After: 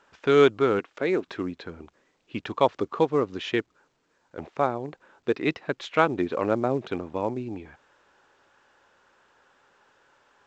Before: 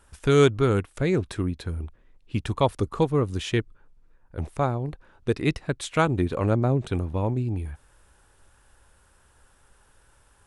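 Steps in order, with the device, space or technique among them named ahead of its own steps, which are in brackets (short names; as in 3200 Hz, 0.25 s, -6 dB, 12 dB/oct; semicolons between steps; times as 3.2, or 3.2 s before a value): 0.79–1.28 HPF 210 Hz; telephone (BPF 290–3400 Hz; gain +2 dB; A-law 128 kbps 16000 Hz)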